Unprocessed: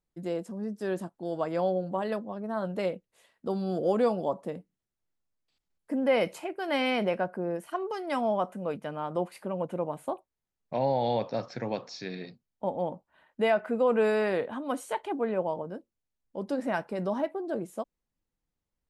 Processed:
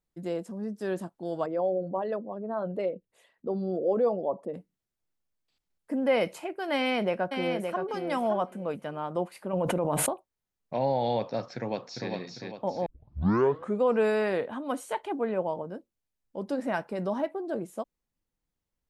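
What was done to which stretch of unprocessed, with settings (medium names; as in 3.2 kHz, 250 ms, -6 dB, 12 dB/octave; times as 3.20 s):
1.46–4.54 s: resonances exaggerated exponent 1.5
6.74–7.84 s: echo throw 570 ms, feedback 15%, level -5.5 dB
9.53–10.09 s: level flattener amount 100%
11.56–12.11 s: echo throw 400 ms, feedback 45%, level -3.5 dB
12.86 s: tape start 0.97 s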